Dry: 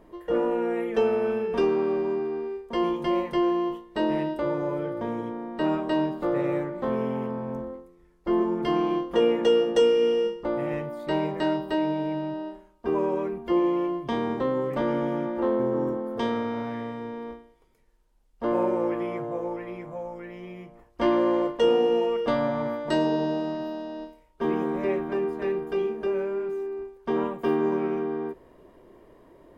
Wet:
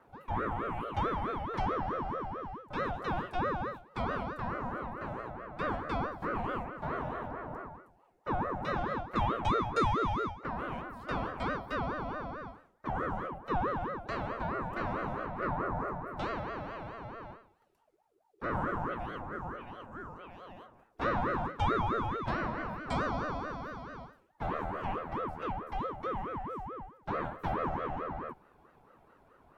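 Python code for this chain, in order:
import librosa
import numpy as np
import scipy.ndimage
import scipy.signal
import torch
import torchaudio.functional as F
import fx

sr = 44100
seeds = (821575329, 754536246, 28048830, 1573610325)

y = fx.vibrato(x, sr, rate_hz=5.4, depth_cents=45.0)
y = fx.ring_lfo(y, sr, carrier_hz=640.0, swing_pct=45, hz=4.6)
y = F.gain(torch.from_numpy(y), -6.0).numpy()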